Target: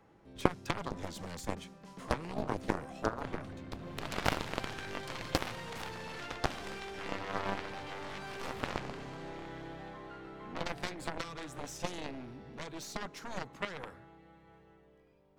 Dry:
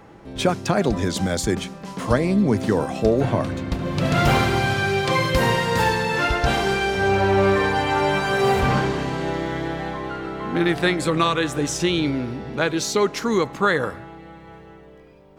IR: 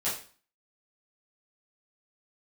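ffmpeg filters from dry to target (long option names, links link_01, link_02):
-filter_complex "[0:a]acrossover=split=360[link_01][link_02];[link_02]acompressor=threshold=-22dB:ratio=4[link_03];[link_01][link_03]amix=inputs=2:normalize=0,aeval=exprs='0.473*(cos(1*acos(clip(val(0)/0.473,-1,1)))-cos(1*PI/2))+0.0473*(cos(2*acos(clip(val(0)/0.473,-1,1)))-cos(2*PI/2))+0.211*(cos(3*acos(clip(val(0)/0.473,-1,1)))-cos(3*PI/2))+0.0188*(cos(5*acos(clip(val(0)/0.473,-1,1)))-cos(5*PI/2))':channel_layout=same"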